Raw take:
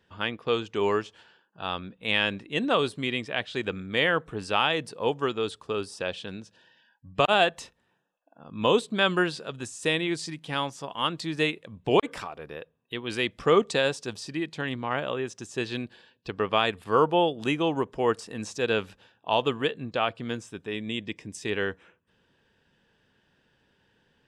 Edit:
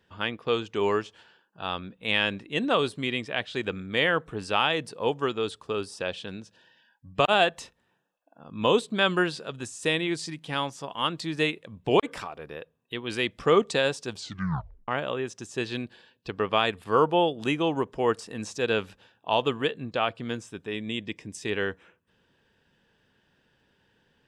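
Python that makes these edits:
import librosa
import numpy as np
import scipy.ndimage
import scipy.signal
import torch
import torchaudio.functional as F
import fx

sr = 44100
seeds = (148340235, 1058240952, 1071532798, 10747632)

y = fx.edit(x, sr, fx.tape_stop(start_s=14.13, length_s=0.75), tone=tone)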